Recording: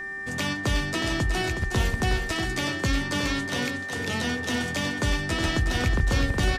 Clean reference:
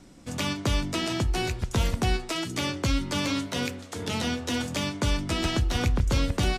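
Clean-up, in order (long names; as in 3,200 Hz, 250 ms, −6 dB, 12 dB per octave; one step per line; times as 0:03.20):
hum removal 390.9 Hz, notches 6
notch filter 1,800 Hz, Q 30
echo removal 367 ms −7.5 dB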